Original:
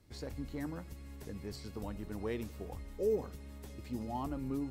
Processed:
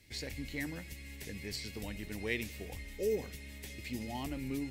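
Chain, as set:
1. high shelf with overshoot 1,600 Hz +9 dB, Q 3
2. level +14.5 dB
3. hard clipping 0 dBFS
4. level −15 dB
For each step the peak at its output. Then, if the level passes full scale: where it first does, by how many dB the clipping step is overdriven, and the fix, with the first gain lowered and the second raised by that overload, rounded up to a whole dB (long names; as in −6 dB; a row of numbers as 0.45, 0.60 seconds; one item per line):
−19.0, −4.5, −4.5, −19.5 dBFS
no step passes full scale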